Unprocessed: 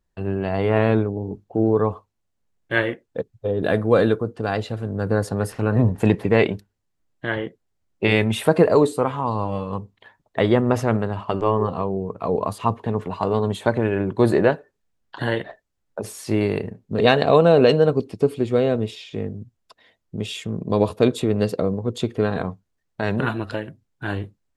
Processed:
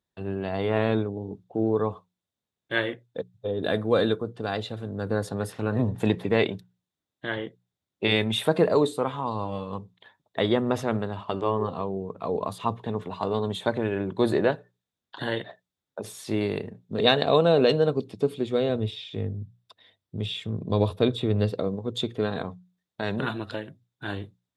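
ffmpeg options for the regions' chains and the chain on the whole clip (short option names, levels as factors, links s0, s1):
-filter_complex "[0:a]asettb=1/sr,asplit=3[s0][s1][s2];[s0]atrim=end=18.694[s3];[s1]atrim=start=18.69:end=21.59,asetpts=PTS-STARTPTS,afade=t=in:d=0.004:c=qsin,afade=t=out:st=2.896:d=0.004:c=qsin,equalizer=f=96:w=2.4:g=11,bandreject=f=6700:w=9.8,acrossover=split=4000[s4][s5];[s5]acompressor=threshold=0.00447:ratio=4:attack=1:release=60[s6];[s4][s6]amix=inputs=2:normalize=0[s7];[s2]atrim=start=21.586[s8];[s3][s7]acrossfade=d=0.004:c1=hsin:c2=qsin[s9];[s9][s8]acrossfade=d=0.004:c1=qsin:c2=hsin,highpass=91,equalizer=f=3600:w=5.4:g=11.5,bandreject=f=60:t=h:w=6,bandreject=f=120:t=h:w=6,bandreject=f=180:t=h:w=6,volume=0.531"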